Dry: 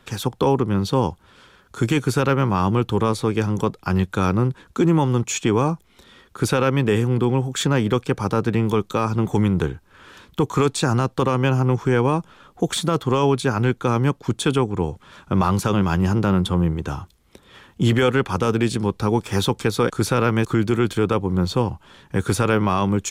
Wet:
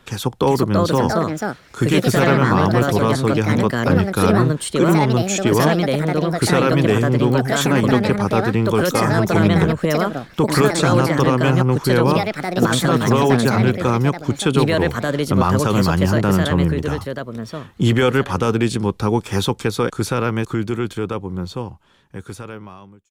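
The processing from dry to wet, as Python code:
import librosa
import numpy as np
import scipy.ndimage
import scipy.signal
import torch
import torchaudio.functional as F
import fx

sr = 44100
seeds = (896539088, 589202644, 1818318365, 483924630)

y = fx.fade_out_tail(x, sr, length_s=4.09)
y = fx.echo_pitch(y, sr, ms=418, semitones=4, count=2, db_per_echo=-3.0)
y = y * 10.0 ** (2.0 / 20.0)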